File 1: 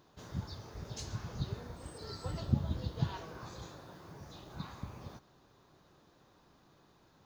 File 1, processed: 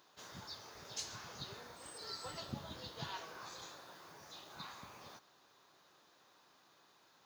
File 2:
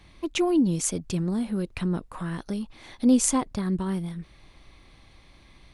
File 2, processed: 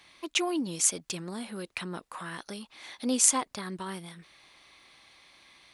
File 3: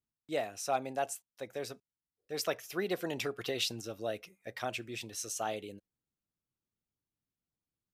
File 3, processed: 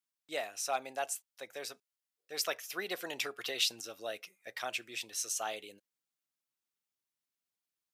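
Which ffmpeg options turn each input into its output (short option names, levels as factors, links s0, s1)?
-af "highpass=f=1300:p=1,volume=1.5"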